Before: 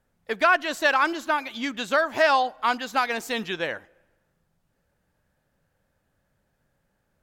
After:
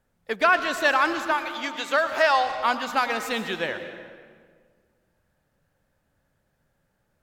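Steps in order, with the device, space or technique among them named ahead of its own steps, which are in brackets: 1.31–2.59 s: high-pass 400 Hz 12 dB/octave; saturated reverb return (on a send at -7.5 dB: reverberation RT60 1.8 s, pre-delay 99 ms + saturation -18 dBFS, distortion -14 dB)

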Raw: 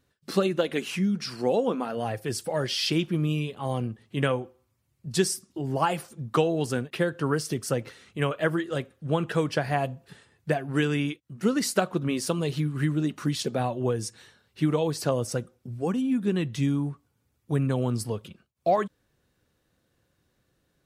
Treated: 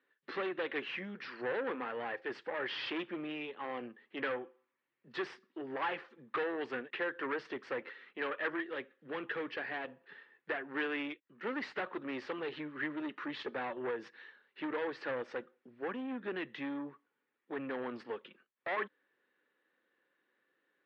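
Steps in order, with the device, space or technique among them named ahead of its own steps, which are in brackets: high-pass 230 Hz 24 dB/octave; guitar amplifier (valve stage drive 28 dB, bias 0.45; tone controls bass -15 dB, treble -11 dB; cabinet simulation 89–3700 Hz, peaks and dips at 130 Hz +8 dB, 670 Hz -9 dB, 1.8 kHz +8 dB); 8.60–9.88 s: peaking EQ 1 kHz -4 dB 1.9 oct; trim -1.5 dB

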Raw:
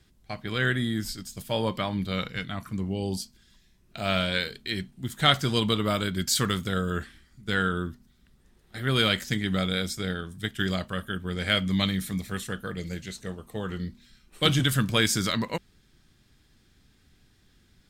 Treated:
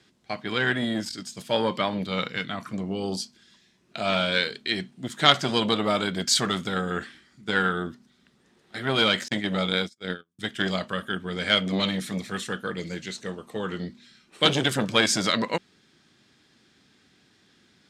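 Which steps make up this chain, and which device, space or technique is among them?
9.28–10.39 s: gate -28 dBFS, range -41 dB; public-address speaker with an overloaded transformer (transformer saturation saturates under 1 kHz; band-pass 210–7000 Hz); trim +5.5 dB

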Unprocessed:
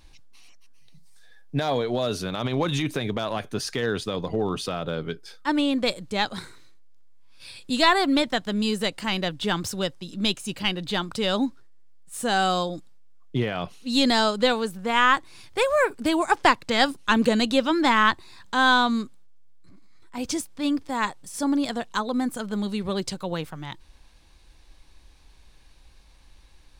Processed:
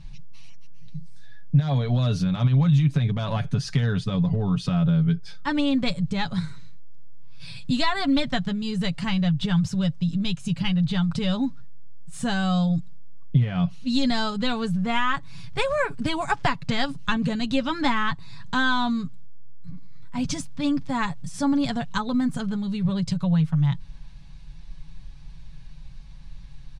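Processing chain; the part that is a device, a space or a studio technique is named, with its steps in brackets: jukebox (low-pass 6.7 kHz 12 dB/octave; resonant low shelf 240 Hz +11.5 dB, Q 3; compression 4:1, threshold -21 dBFS, peak gain reduction 12 dB); comb 7.1 ms, depth 57%

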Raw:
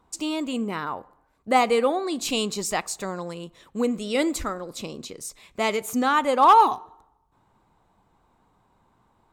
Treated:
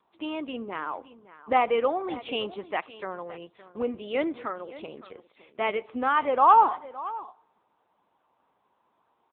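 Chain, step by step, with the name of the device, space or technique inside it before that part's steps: satellite phone (band-pass 340–3400 Hz; delay 565 ms -16.5 dB; trim -1.5 dB; AMR-NB 6.7 kbps 8 kHz)

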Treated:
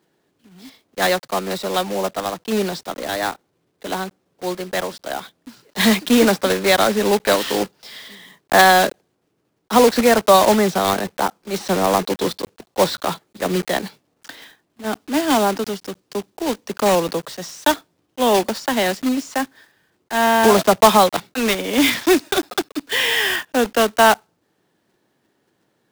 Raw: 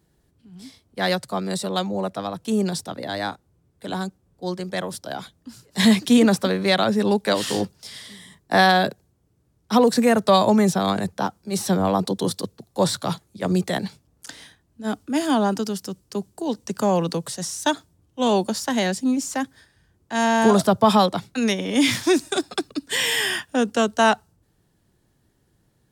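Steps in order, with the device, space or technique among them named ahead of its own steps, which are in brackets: early digital voice recorder (band-pass 290–3700 Hz; block-companded coder 3-bit); trim +5 dB

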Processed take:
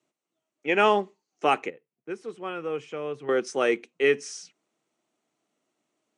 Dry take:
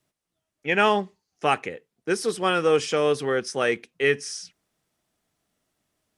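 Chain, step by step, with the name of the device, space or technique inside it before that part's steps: 1.70–3.29 s: FFT filter 130 Hz 0 dB, 260 Hz -12 dB, 2.5 kHz -10 dB, 4.7 kHz -20 dB; television speaker (cabinet simulation 170–7800 Hz, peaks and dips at 180 Hz -7 dB, 340 Hz +4 dB, 1.7 kHz -6 dB, 3.5 kHz -4 dB, 5 kHz -8 dB)

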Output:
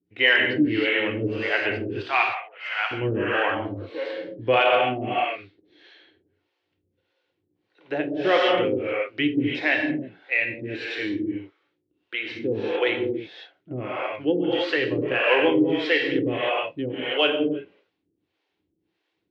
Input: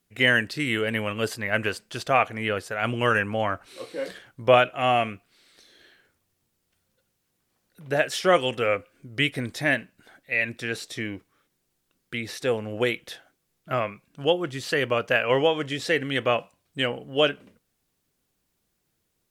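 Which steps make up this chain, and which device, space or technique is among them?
2.03–2.91 s: steep high-pass 770 Hz 36 dB/octave; gated-style reverb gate 340 ms flat, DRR -2 dB; guitar amplifier with harmonic tremolo (harmonic tremolo 1.6 Hz, depth 100%, crossover 430 Hz; saturation -8 dBFS, distortion -26 dB; cabinet simulation 110–3600 Hz, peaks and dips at 150 Hz -8 dB, 220 Hz -7 dB, 320 Hz +10 dB, 640 Hz -5 dB, 1.2 kHz -6 dB, 1.6 kHz -3 dB); trim +4 dB

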